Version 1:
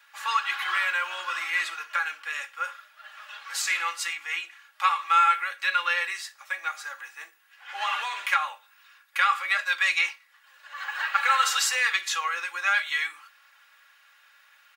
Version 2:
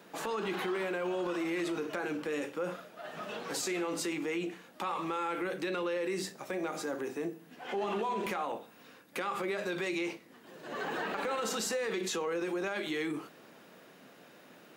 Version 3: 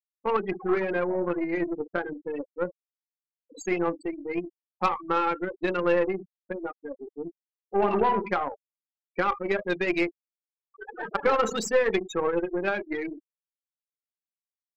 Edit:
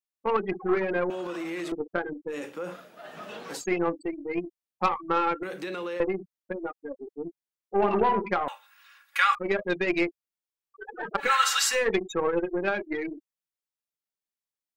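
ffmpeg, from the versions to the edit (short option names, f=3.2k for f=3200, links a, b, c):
-filter_complex "[1:a]asplit=3[a][b][c];[0:a]asplit=2[d][e];[2:a]asplit=6[f][g][h][i][j][k];[f]atrim=end=1.102[l];[a]atrim=start=1.098:end=1.722[m];[g]atrim=start=1.718:end=2.37[n];[b]atrim=start=2.27:end=3.65[o];[h]atrim=start=3.55:end=5.432[p];[c]atrim=start=5.428:end=6.002[q];[i]atrim=start=5.998:end=8.482[r];[d]atrim=start=8.478:end=9.352[s];[j]atrim=start=9.348:end=11.33[t];[e]atrim=start=11.17:end=11.86[u];[k]atrim=start=11.7[v];[l][m]acrossfade=d=0.004:c1=hsin:c2=hsin[w];[w][n]acrossfade=d=0.004:c1=hsin:c2=hsin[x];[x][o]acrossfade=d=0.1:c1=tri:c2=tri[y];[y][p]acrossfade=d=0.1:c1=tri:c2=tri[z];[z][q]acrossfade=d=0.004:c1=hsin:c2=hsin[aa];[aa][r]acrossfade=d=0.004:c1=hsin:c2=hsin[ab];[ab][s]acrossfade=d=0.004:c1=hsin:c2=hsin[ac];[ac][t]acrossfade=d=0.004:c1=hsin:c2=hsin[ad];[ad][u]acrossfade=d=0.16:c1=tri:c2=tri[ae];[ae][v]acrossfade=d=0.16:c1=tri:c2=tri"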